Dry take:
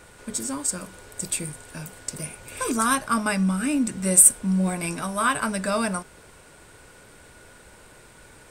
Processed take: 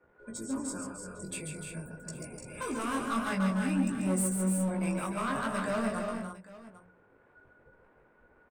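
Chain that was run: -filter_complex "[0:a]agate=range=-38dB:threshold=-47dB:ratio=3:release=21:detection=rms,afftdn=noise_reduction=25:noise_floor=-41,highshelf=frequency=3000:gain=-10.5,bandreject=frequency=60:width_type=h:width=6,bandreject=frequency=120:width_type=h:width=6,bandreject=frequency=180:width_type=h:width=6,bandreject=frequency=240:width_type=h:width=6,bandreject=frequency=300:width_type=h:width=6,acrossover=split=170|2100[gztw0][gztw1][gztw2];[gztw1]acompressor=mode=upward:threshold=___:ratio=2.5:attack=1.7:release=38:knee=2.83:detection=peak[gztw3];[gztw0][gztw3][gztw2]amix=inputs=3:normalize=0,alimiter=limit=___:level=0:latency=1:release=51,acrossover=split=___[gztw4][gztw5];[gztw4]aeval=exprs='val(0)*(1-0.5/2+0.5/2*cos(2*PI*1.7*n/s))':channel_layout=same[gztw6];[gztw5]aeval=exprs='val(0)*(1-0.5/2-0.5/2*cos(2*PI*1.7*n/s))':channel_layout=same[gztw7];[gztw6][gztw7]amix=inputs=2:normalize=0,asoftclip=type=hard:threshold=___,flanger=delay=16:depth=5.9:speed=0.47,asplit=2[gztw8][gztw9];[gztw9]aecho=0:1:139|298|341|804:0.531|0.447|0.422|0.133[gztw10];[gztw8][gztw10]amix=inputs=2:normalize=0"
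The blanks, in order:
-38dB, -15dB, 620, -26dB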